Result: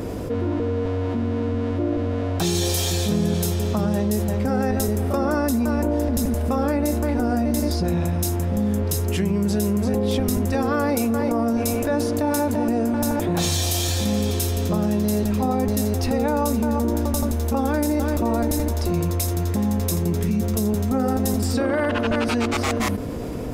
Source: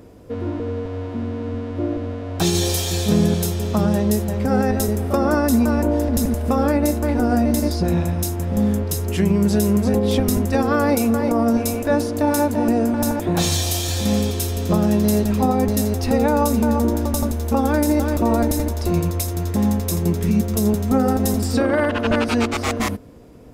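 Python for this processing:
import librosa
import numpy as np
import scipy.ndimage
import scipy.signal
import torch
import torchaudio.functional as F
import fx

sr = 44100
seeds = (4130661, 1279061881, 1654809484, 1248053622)

y = fx.env_flatten(x, sr, amount_pct=70)
y = y * librosa.db_to_amplitude(-6.0)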